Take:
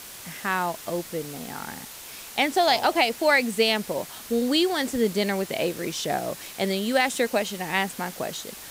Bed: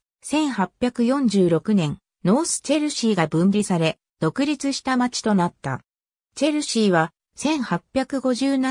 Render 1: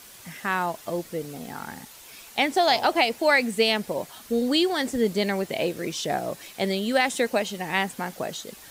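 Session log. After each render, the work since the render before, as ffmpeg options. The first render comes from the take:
ffmpeg -i in.wav -af "afftdn=noise_reduction=7:noise_floor=-42" out.wav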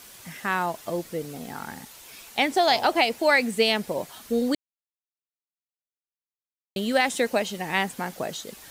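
ffmpeg -i in.wav -filter_complex "[0:a]asplit=3[link_01][link_02][link_03];[link_01]atrim=end=4.55,asetpts=PTS-STARTPTS,afade=type=out:start_time=4.546:duration=0.004:curve=hsin[link_04];[link_02]atrim=start=4.55:end=6.76,asetpts=PTS-STARTPTS,volume=0[link_05];[link_03]atrim=start=6.76,asetpts=PTS-STARTPTS,afade=type=in:duration=0.004:curve=hsin[link_06];[link_04][link_05][link_06]concat=n=3:v=0:a=1" out.wav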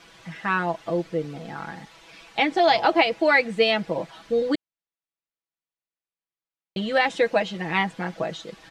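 ffmpeg -i in.wav -af "lowpass=3500,aecho=1:1:6.1:0.81" out.wav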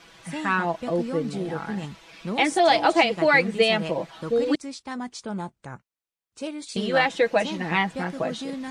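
ffmpeg -i in.wav -i bed.wav -filter_complex "[1:a]volume=-12.5dB[link_01];[0:a][link_01]amix=inputs=2:normalize=0" out.wav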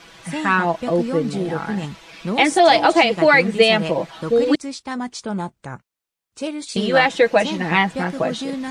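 ffmpeg -i in.wav -af "volume=6dB,alimiter=limit=-3dB:level=0:latency=1" out.wav

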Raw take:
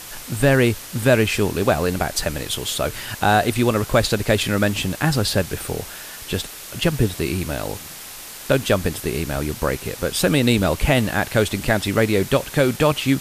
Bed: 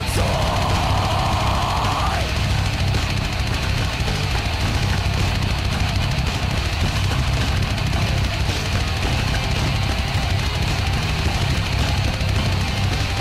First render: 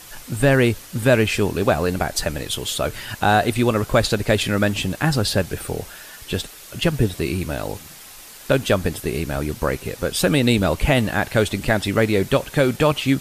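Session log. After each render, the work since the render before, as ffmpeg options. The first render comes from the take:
ffmpeg -i in.wav -af "afftdn=noise_reduction=6:noise_floor=-37" out.wav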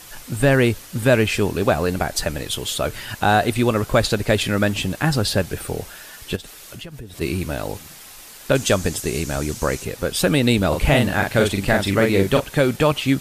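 ffmpeg -i in.wav -filter_complex "[0:a]asplit=3[link_01][link_02][link_03];[link_01]afade=type=out:start_time=6.35:duration=0.02[link_04];[link_02]acompressor=threshold=-32dB:ratio=8:attack=3.2:release=140:knee=1:detection=peak,afade=type=in:start_time=6.35:duration=0.02,afade=type=out:start_time=7.2:duration=0.02[link_05];[link_03]afade=type=in:start_time=7.2:duration=0.02[link_06];[link_04][link_05][link_06]amix=inputs=3:normalize=0,asettb=1/sr,asplit=3[link_07][link_08][link_09];[link_07]atrim=end=8.554[link_10];[link_08]atrim=start=8.55:end=9.85,asetpts=PTS-STARTPTS,afade=type=in:duration=0.004:curve=qsin,afade=type=out:start_time=1.296:duration=0.004:curve=qsin,equalizer=frequency=6800:width=1.2:gain=11[link_11];[link_09]atrim=start=9.846[link_12];[link_10][link_11]acrossfade=duration=0.004:curve1=hsin:curve2=qsin[link_13];[link_13][link_12]acrossfade=duration=0.004:curve1=qsin:curve2=hsin,asettb=1/sr,asplit=3[link_14][link_15][link_16];[link_14]atrim=end=10.684[link_17];[link_15]atrim=start=10.68:end=12.4,asetpts=PTS-STARTPTS,afade=type=in:duration=0.004:curve=qsin,afade=type=out:start_time=1.716:duration=0.004:curve=qsin,asplit=2[link_18][link_19];[link_19]adelay=41,volume=-4dB[link_20];[link_18][link_20]amix=inputs=2:normalize=0,atrim=end_sample=75852[link_21];[link_16]atrim=start=12.396[link_22];[link_17][link_21]acrossfade=duration=0.004:curve1=hsin:curve2=qsin[link_23];[link_23][link_22]acrossfade=duration=0.004:curve1=qsin:curve2=hsin" out.wav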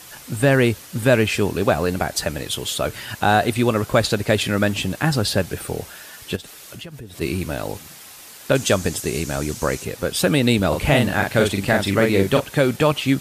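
ffmpeg -i in.wav -af "highpass=69" out.wav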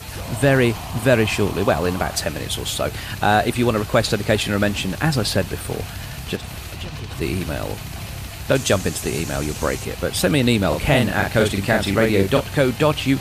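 ffmpeg -i in.wav -i bed.wav -filter_complex "[1:a]volume=-12dB[link_01];[0:a][link_01]amix=inputs=2:normalize=0" out.wav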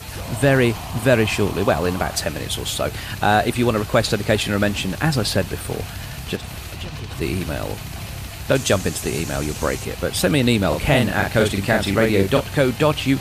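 ffmpeg -i in.wav -af anull out.wav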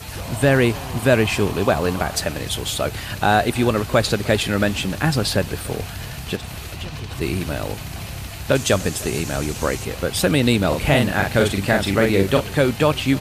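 ffmpeg -i in.wav -af "aecho=1:1:301:0.0794" out.wav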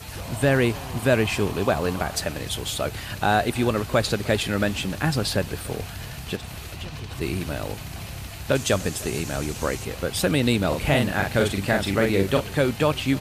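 ffmpeg -i in.wav -af "volume=-4dB" out.wav

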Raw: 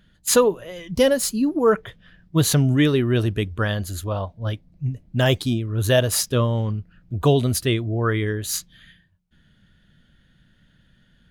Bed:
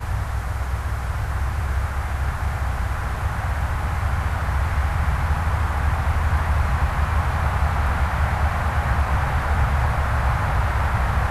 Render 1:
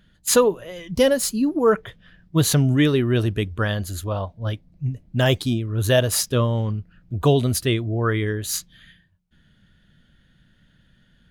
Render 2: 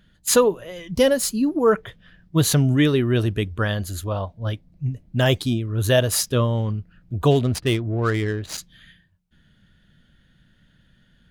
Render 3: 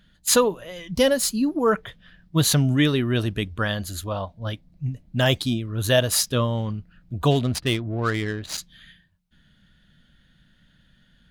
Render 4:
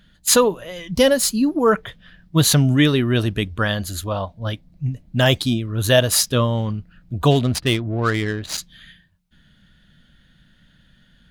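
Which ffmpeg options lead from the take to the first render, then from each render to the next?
ffmpeg -i in.wav -af anull out.wav
ffmpeg -i in.wav -filter_complex "[0:a]asplit=3[link_01][link_02][link_03];[link_01]afade=type=out:start_time=7.3:duration=0.02[link_04];[link_02]adynamicsmooth=sensitivity=4:basefreq=1300,afade=type=in:start_time=7.3:duration=0.02,afade=type=out:start_time=8.57:duration=0.02[link_05];[link_03]afade=type=in:start_time=8.57:duration=0.02[link_06];[link_04][link_05][link_06]amix=inputs=3:normalize=0" out.wav
ffmpeg -i in.wav -af "equalizer=frequency=100:width_type=o:width=0.67:gain=-5,equalizer=frequency=400:width_type=o:width=0.67:gain=-5,equalizer=frequency=4000:width_type=o:width=0.67:gain=3" out.wav
ffmpeg -i in.wav -af "volume=4dB,alimiter=limit=-3dB:level=0:latency=1" out.wav

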